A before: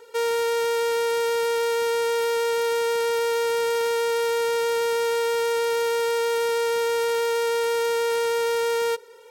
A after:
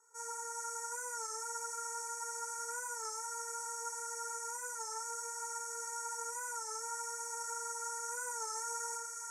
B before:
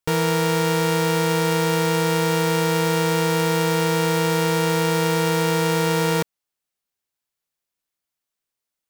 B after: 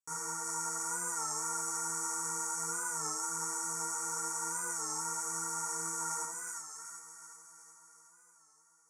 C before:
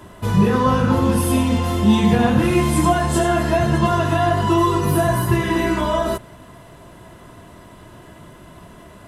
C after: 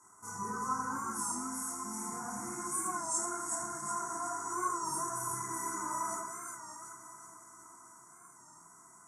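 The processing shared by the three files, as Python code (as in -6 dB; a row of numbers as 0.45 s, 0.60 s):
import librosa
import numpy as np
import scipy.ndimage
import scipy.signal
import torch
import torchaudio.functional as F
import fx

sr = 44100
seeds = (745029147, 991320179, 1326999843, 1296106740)

y = fx.low_shelf(x, sr, hz=67.0, db=-10.0)
y = fx.chorus_voices(y, sr, voices=6, hz=0.68, base_ms=27, depth_ms=4.2, mix_pct=50)
y = scipy.signal.sosfilt(scipy.signal.butter(4, 8400.0, 'lowpass', fs=sr, output='sos'), y)
y = fx.echo_heads(y, sr, ms=299, heads='first and second', feedback_pct=64, wet_db=-20.0)
y = fx.rider(y, sr, range_db=4, speed_s=2.0)
y = scipy.signal.sosfilt(scipy.signal.ellip(3, 1.0, 60, [1600.0, 6200.0], 'bandstop', fs=sr, output='sos'), y)
y = np.diff(y, prepend=0.0)
y = y + 0.9 * np.pad(y, (int(0.9 * sr / 1000.0), 0))[:len(y)]
y = fx.echo_split(y, sr, split_hz=1200.0, low_ms=88, high_ms=370, feedback_pct=52, wet_db=-3)
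y = fx.record_warp(y, sr, rpm=33.33, depth_cents=100.0)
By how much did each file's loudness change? -16.0 LU, -14.5 LU, -18.5 LU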